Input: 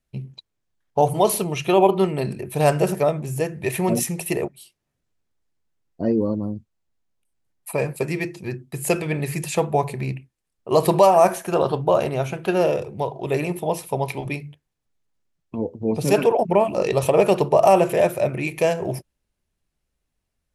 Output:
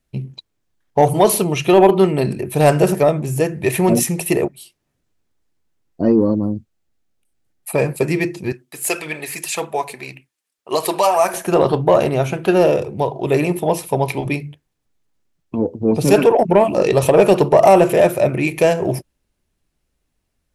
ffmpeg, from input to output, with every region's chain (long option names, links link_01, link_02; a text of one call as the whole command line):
ffmpeg -i in.wav -filter_complex "[0:a]asettb=1/sr,asplit=3[link_01][link_02][link_03];[link_01]atrim=end=6.564[link_04];[link_02]atrim=start=6.56:end=7.76,asetpts=PTS-STARTPTS,afade=type=in:duration=0.004:curve=qsin,afade=type=out:start_time=1.196:duration=0.004:curve=qsin,bandreject=frequency=1000:width=6.7,volume=16.5dB,asoftclip=hard,volume=-16.5dB[link_05];[link_03]atrim=start=7.756[link_06];[link_04][link_05]acrossfade=duration=0.004:curve1=hsin:curve2=qsin[link_07];[link_07][link_06]acrossfade=duration=0.004:curve1=qsin:curve2=hsin,asettb=1/sr,asplit=3[link_08][link_09][link_10];[link_08]atrim=end=8.524[link_11];[link_09]atrim=start=8.52:end=11.34,asetpts=PTS-STARTPTS,afade=type=in:duration=0.004:curve=qsin,afade=type=out:start_time=2.816:duration=0.004:curve=qsin,highpass=frequency=1400:poles=1,aphaser=in_gain=1:out_gain=1:delay=4.6:decay=0.38:speed=1.8:type=triangular[link_12];[link_10]atrim=start=11.336[link_13];[link_11][link_12]acrossfade=duration=0.004:curve1=hsin:curve2=qsin[link_14];[link_14][link_13]acrossfade=duration=0.004:curve1=qsin:curve2=hsin,equalizer=frequency=300:width_type=o:width=0.69:gain=3.5,acontrast=42" out.wav